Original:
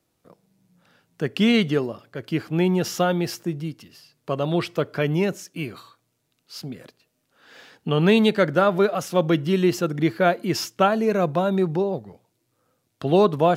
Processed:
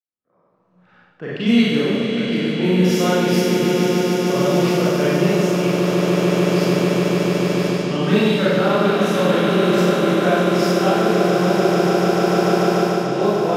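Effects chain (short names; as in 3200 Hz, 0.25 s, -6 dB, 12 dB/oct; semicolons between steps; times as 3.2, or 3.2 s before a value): opening faded in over 3.38 s; spectral noise reduction 7 dB; on a send: swelling echo 0.147 s, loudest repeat 8, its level -8 dB; on the sum: Schroeder reverb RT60 1.4 s, combs from 30 ms, DRR -10 dB; AGC gain up to 12 dB; low-pass opened by the level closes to 1600 Hz, open at -10 dBFS; mismatched tape noise reduction encoder only; gain -4 dB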